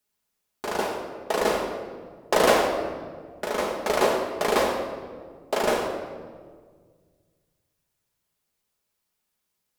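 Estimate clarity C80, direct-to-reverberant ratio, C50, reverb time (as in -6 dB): 5.0 dB, -0.5 dB, 4.0 dB, 1.7 s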